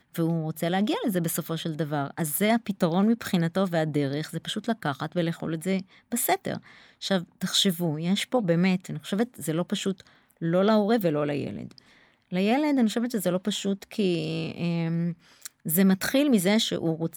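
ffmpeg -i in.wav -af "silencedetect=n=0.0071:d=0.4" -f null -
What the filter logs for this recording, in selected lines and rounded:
silence_start: 11.78
silence_end: 12.32 | silence_duration: 0.54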